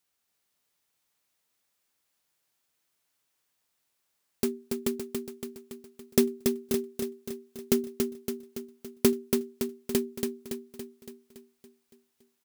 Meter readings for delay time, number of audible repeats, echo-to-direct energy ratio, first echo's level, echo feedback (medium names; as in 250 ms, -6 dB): 282 ms, 7, -3.0 dB, -4.5 dB, 57%